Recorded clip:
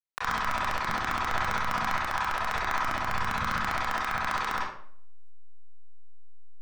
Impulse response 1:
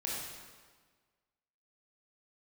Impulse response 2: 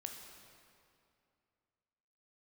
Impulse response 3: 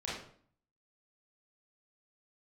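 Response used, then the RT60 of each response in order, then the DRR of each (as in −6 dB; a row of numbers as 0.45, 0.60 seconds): 3; 1.5, 2.5, 0.55 seconds; −5.0, 2.5, −8.0 decibels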